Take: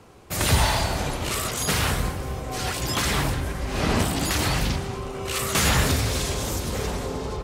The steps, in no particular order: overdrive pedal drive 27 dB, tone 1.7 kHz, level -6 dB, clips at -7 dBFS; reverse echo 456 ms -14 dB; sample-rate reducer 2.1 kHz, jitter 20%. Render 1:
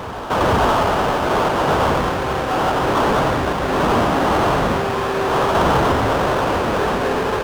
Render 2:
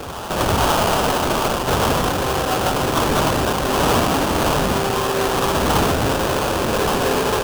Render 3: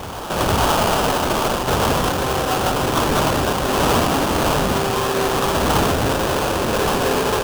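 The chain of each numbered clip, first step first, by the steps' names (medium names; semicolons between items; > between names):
sample-rate reducer > overdrive pedal > reverse echo; overdrive pedal > reverse echo > sample-rate reducer; overdrive pedal > sample-rate reducer > reverse echo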